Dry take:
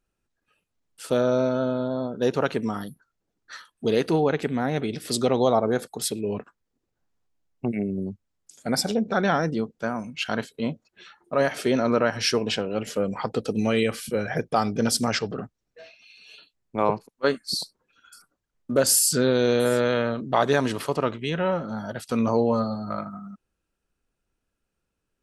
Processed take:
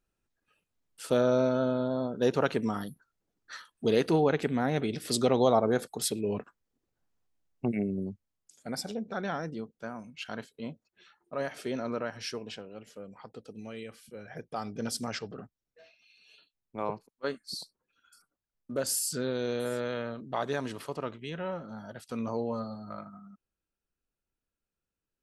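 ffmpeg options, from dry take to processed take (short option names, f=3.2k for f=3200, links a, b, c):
-af "volume=5.5dB,afade=t=out:st=7.77:d=0.97:silence=0.375837,afade=t=out:st=11.84:d=1.06:silence=0.398107,afade=t=in:st=14.14:d=0.73:silence=0.375837"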